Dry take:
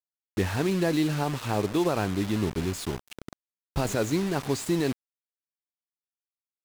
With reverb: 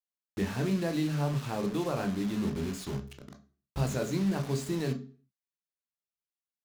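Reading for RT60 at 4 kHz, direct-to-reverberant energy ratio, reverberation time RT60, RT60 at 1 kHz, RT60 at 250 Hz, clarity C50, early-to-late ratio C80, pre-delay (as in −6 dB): 0.35 s, 5.0 dB, 0.40 s, 0.40 s, 0.40 s, 14.0 dB, 19.0 dB, 15 ms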